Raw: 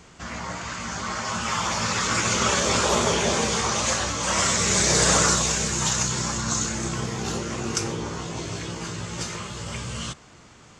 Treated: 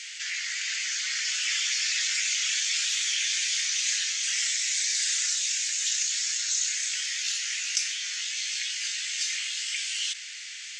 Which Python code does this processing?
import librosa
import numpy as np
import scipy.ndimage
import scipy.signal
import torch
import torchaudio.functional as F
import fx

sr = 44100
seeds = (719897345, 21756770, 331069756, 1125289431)

y = scipy.signal.sosfilt(scipy.signal.butter(8, 1800.0, 'highpass', fs=sr, output='sos'), x)
y = fx.high_shelf(y, sr, hz=2500.0, db=9.5)
y = fx.rider(y, sr, range_db=4, speed_s=0.5)
y = fx.air_absorb(y, sr, metres=76.0)
y = fx.env_flatten(y, sr, amount_pct=50)
y = F.gain(torch.from_numpy(y), -7.5).numpy()